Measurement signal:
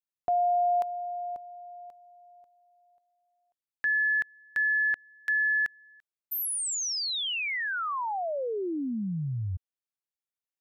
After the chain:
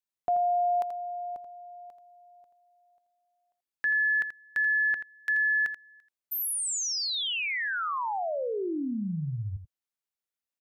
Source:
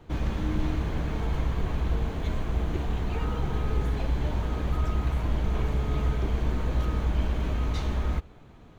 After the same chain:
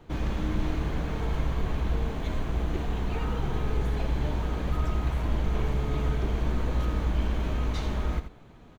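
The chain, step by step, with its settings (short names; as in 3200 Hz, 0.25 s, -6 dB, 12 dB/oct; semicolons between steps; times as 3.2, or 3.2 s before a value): bell 78 Hz -4 dB 1 oct; on a send: echo 83 ms -10 dB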